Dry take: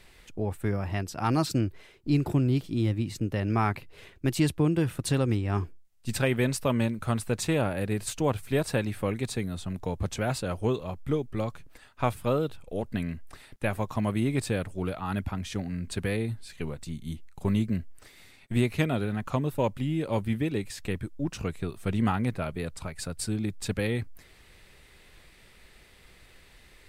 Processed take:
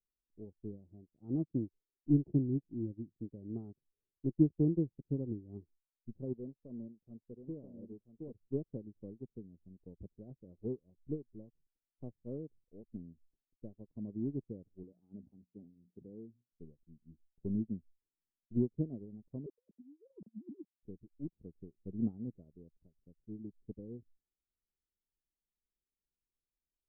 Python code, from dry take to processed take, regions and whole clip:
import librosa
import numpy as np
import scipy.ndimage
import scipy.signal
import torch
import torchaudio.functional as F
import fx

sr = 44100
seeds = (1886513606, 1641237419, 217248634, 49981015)

y = fx.chain(x, sr, fx.low_shelf(hz=130.0, db=-9.0),
    fx.echo_single(ms=981, db=-4.5),
    fx.clip_hard(threshold_db=-23.0), at=(6.33, 8.33))
y = fx.chain(y, sr, fx.highpass(hz=130.0, slope=12),
    fx.hum_notches(base_hz=60, count=4),
    fx.sustainer(db_per_s=51.0), at=(14.83, 16.52))
y = fx.chain(y, sr, fx.sine_speech(),
    fx.over_compress(threshold_db=-32.0, ratio=-0.5), at=(19.46, 20.83))
y = scipy.signal.sosfilt(scipy.signal.cheby2(4, 80, 2400.0, 'lowpass', fs=sr, output='sos'), y)
y = fx.peak_eq(y, sr, hz=100.0, db=-8.0, octaves=0.96)
y = fx.upward_expand(y, sr, threshold_db=-49.0, expansion=2.5)
y = y * 10.0 ** (1.0 / 20.0)